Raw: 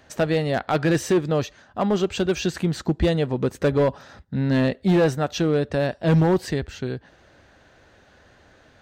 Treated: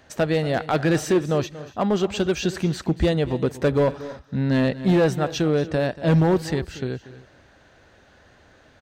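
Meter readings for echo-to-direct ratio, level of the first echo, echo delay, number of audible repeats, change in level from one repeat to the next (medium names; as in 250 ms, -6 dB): -15.0 dB, -16.0 dB, 235 ms, 2, no regular repeats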